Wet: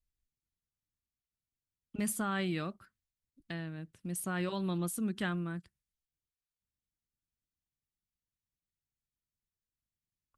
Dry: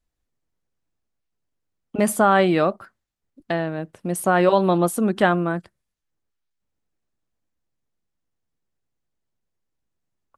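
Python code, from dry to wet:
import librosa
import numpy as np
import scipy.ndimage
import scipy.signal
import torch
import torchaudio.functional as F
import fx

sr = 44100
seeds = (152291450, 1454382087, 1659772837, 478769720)

y = fx.tone_stack(x, sr, knobs='6-0-2')
y = y * librosa.db_to_amplitude(5.5)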